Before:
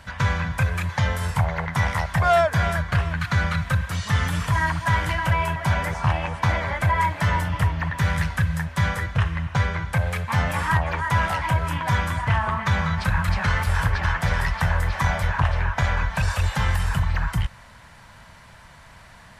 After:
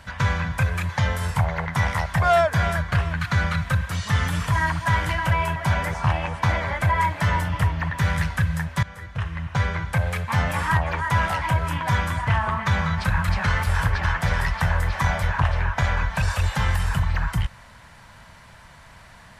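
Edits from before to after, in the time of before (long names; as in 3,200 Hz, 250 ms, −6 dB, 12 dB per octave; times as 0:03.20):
0:08.83–0:09.69: fade in, from −21 dB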